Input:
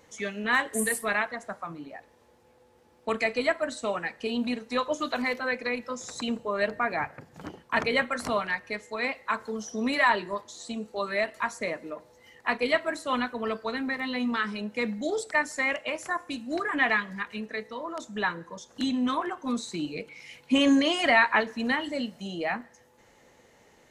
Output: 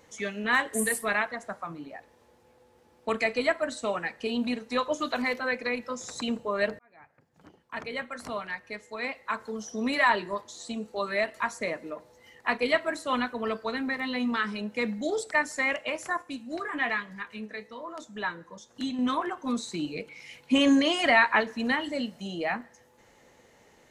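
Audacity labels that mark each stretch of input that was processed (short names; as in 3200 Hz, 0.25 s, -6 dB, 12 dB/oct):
6.790000	10.180000	fade in
16.220000	18.990000	flange 1.1 Hz, delay 6.3 ms, depth 4.2 ms, regen +68%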